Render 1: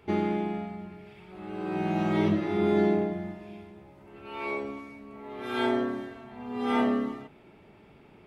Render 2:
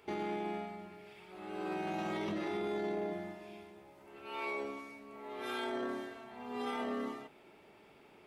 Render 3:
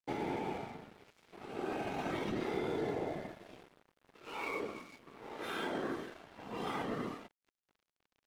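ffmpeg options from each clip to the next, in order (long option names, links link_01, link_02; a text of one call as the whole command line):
ffmpeg -i in.wav -af "bass=frequency=250:gain=-12,treble=frequency=4000:gain=6,alimiter=level_in=3.5dB:limit=-24dB:level=0:latency=1:release=12,volume=-3.5dB,volume=-2.5dB" out.wav
ffmpeg -i in.wav -af "afftfilt=real='hypot(re,im)*cos(2*PI*random(0))':imag='hypot(re,im)*sin(2*PI*random(1))':win_size=512:overlap=0.75,aeval=exprs='sgn(val(0))*max(abs(val(0))-0.00119,0)':channel_layout=same,volume=7dB" out.wav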